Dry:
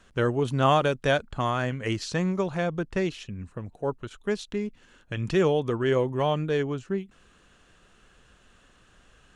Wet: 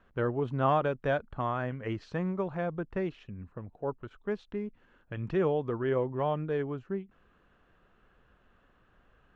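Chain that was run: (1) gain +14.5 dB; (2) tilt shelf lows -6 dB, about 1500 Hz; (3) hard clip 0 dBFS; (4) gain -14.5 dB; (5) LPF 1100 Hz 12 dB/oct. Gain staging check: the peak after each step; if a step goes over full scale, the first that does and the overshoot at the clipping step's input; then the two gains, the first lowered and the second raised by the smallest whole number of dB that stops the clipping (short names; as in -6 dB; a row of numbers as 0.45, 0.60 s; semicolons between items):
+5.0, +3.5, 0.0, -14.5, -15.5 dBFS; step 1, 3.5 dB; step 1 +10.5 dB, step 4 -10.5 dB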